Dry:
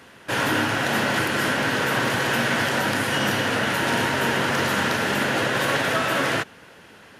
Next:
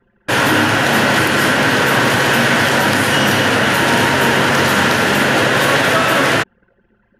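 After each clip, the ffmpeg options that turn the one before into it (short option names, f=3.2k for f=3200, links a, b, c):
-filter_complex "[0:a]anlmdn=2.51,asplit=2[a][b];[b]alimiter=limit=-20dB:level=0:latency=1,volume=-1dB[c];[a][c]amix=inputs=2:normalize=0,volume=6dB"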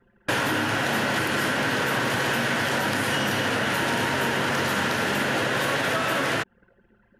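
-af "acompressor=threshold=-19dB:ratio=5,volume=-3dB"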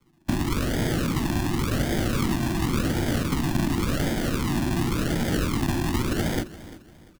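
-af "acrusher=samples=41:mix=1:aa=0.000001:lfo=1:lforange=24.6:lforate=0.91,aecho=1:1:345|690|1035:0.141|0.0466|0.0154,afreqshift=-370"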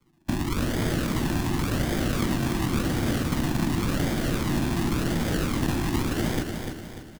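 -af "aecho=1:1:296|592|888|1184|1480:0.501|0.216|0.0927|0.0398|0.0171,volume=-2dB"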